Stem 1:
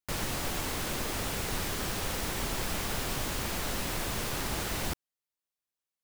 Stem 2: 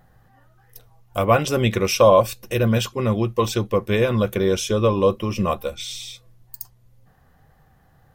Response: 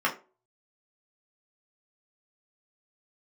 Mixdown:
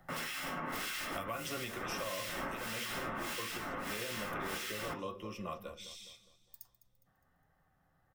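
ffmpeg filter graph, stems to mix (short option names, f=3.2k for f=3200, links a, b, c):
-filter_complex "[0:a]acrossover=split=1700[a][b];[a]aeval=exprs='val(0)*(1-1/2+1/2*cos(2*PI*1.6*n/s))':c=same[c];[b]aeval=exprs='val(0)*(1-1/2-1/2*cos(2*PI*1.6*n/s))':c=same[d];[c][d]amix=inputs=2:normalize=0,volume=-2dB,asplit=2[e][f];[f]volume=-5.5dB[g];[1:a]volume=-8dB,afade=t=out:st=1.59:d=0.27:silence=0.281838,asplit=4[h][i][j][k];[i]volume=-11dB[l];[j]volume=-14.5dB[m];[k]apad=whole_len=266262[n];[e][n]sidechaingate=range=-33dB:threshold=-60dB:ratio=16:detection=peak[o];[2:a]atrim=start_sample=2205[p];[g][l]amix=inputs=2:normalize=0[q];[q][p]afir=irnorm=-1:irlink=0[r];[m]aecho=0:1:205|410|615|820|1025|1230:1|0.43|0.185|0.0795|0.0342|0.0147[s];[o][h][r][s]amix=inputs=4:normalize=0,acrossover=split=160|430|1400|5800[t][u][v][w][x];[t]acompressor=threshold=-52dB:ratio=4[y];[u]acompressor=threshold=-45dB:ratio=4[z];[v]acompressor=threshold=-44dB:ratio=4[aa];[w]acompressor=threshold=-39dB:ratio=4[ab];[x]acompressor=threshold=-45dB:ratio=4[ac];[y][z][aa][ab][ac]amix=inputs=5:normalize=0,alimiter=level_in=4.5dB:limit=-24dB:level=0:latency=1:release=272,volume=-4.5dB"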